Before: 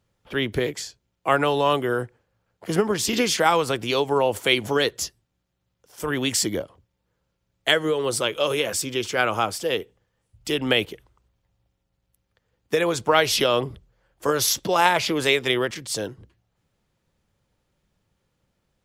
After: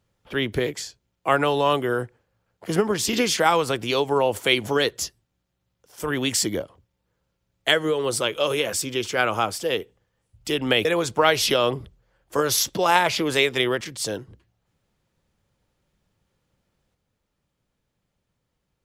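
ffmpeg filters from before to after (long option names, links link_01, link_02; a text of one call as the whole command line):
ffmpeg -i in.wav -filter_complex "[0:a]asplit=2[link_01][link_02];[link_01]atrim=end=10.852[link_03];[link_02]atrim=start=12.748[link_04];[link_03][link_04]acrossfade=duration=0.004:curve1=hsin:curve2=hsin" out.wav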